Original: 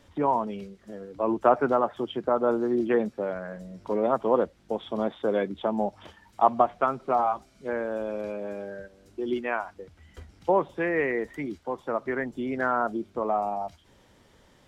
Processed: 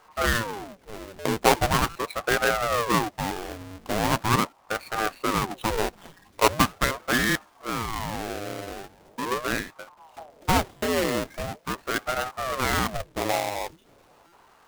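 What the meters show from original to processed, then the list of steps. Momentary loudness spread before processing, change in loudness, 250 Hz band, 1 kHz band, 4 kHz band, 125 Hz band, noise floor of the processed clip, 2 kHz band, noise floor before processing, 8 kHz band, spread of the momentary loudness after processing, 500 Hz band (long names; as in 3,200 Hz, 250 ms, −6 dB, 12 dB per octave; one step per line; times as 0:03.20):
12 LU, +1.5 dB, −0.5 dB, +0.5 dB, +17.5 dB, +10.5 dB, −58 dBFS, +8.0 dB, −60 dBFS, can't be measured, 15 LU, −3.0 dB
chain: each half-wave held at its own peak
buffer that repeats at 0:01.19/0:01.89/0:07.29/0:10.76/0:12.73/0:14.26, samples 256, times 10
ring modulator whose carrier an LFO sweeps 550 Hz, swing 85%, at 0.41 Hz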